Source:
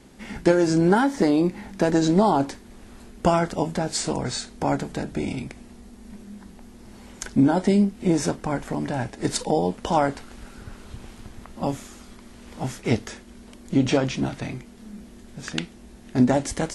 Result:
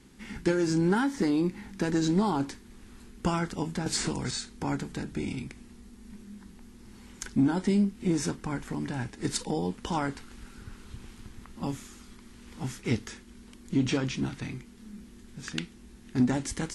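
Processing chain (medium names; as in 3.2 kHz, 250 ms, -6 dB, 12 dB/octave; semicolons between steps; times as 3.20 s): peaking EQ 630 Hz -13 dB 0.68 oct; in parallel at -8.5 dB: hard clipper -17.5 dBFS, distortion -13 dB; 3.86–4.31 s: on the sum: three bands compressed up and down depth 100%; trim -7 dB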